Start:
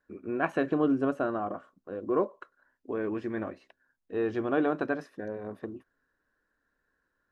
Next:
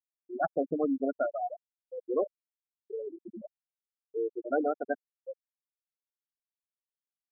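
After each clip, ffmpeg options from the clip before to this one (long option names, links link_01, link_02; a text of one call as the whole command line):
ffmpeg -i in.wav -af "aecho=1:1:1.5:0.44,afftfilt=real='re*gte(hypot(re,im),0.158)':imag='im*gte(hypot(re,im),0.158)':win_size=1024:overlap=0.75" out.wav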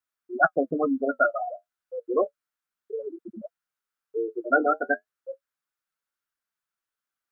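ffmpeg -i in.wav -af "equalizer=frequency=1400:width=1.8:gain=13,flanger=delay=2.8:depth=9.7:regen=-49:speed=0.32:shape=triangular,volume=8dB" out.wav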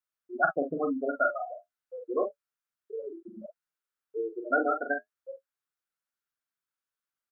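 ffmpeg -i in.wav -filter_complex "[0:a]asplit=2[link_01][link_02];[link_02]adelay=42,volume=-6dB[link_03];[link_01][link_03]amix=inputs=2:normalize=0,volume=-5.5dB" out.wav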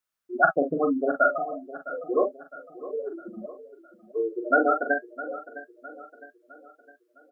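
ffmpeg -i in.wav -af "aecho=1:1:659|1318|1977|2636:0.168|0.0755|0.034|0.0153,volume=5.5dB" out.wav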